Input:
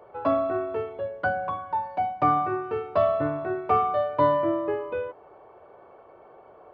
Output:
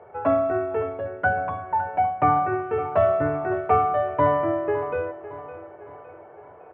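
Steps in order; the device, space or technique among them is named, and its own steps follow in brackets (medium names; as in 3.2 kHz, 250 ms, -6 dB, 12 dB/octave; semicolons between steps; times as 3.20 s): bass cabinet (cabinet simulation 65–2300 Hz, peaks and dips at 90 Hz +7 dB, 140 Hz -4 dB, 220 Hz -5 dB, 320 Hz -7 dB, 560 Hz -6 dB, 1.1 kHz -9 dB); hum notches 50/100 Hz; feedback delay 560 ms, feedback 47%, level -14.5 dB; trim +6.5 dB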